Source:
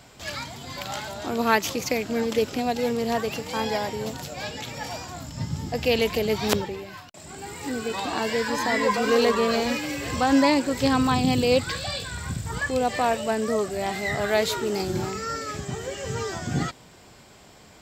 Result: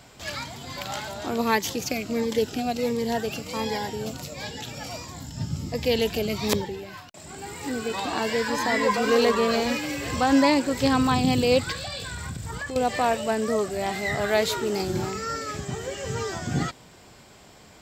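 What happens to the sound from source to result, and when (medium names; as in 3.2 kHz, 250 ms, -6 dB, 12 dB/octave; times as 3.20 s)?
1.41–6.83 s: Shepard-style phaser falling 1.4 Hz
11.72–12.76 s: compression, threshold -29 dBFS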